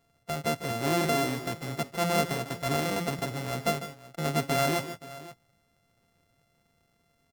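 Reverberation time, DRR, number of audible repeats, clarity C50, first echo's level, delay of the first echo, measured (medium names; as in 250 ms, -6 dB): no reverb, no reverb, 2, no reverb, -12.0 dB, 149 ms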